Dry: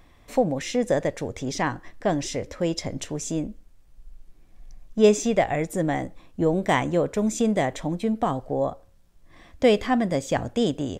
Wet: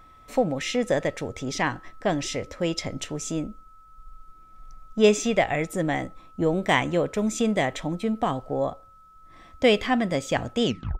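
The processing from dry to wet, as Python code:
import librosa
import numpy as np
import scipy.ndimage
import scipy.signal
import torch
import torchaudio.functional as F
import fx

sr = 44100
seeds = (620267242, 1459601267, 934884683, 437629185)

y = fx.tape_stop_end(x, sr, length_s=0.34)
y = y + 10.0 ** (-49.0 / 20.0) * np.sin(2.0 * np.pi * 1300.0 * np.arange(len(y)) / sr)
y = fx.dynamic_eq(y, sr, hz=2700.0, q=0.98, threshold_db=-43.0, ratio=4.0, max_db=7)
y = F.gain(torch.from_numpy(y), -1.5).numpy()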